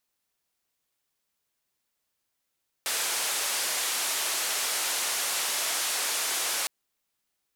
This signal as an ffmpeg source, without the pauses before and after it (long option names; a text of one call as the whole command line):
ffmpeg -f lavfi -i "anoisesrc=color=white:duration=3.81:sample_rate=44100:seed=1,highpass=frequency=500,lowpass=frequency=11000,volume=-21dB" out.wav